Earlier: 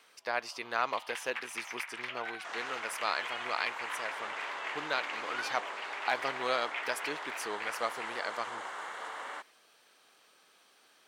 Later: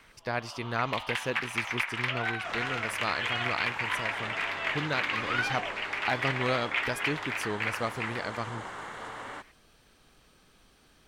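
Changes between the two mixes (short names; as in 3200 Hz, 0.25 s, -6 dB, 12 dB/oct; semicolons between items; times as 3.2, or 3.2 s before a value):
first sound +9.0 dB; master: remove HPF 520 Hz 12 dB/oct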